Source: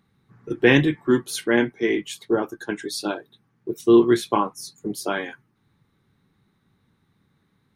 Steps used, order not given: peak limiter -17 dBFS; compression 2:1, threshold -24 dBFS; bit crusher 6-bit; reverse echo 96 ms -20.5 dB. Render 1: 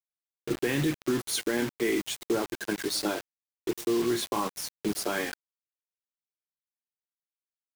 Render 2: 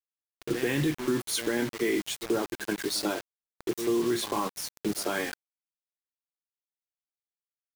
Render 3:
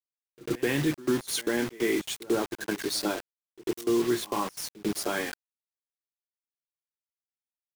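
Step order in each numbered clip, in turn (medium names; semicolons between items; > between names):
peak limiter > compression > reverse echo > bit crusher; reverse echo > peak limiter > bit crusher > compression; compression > peak limiter > bit crusher > reverse echo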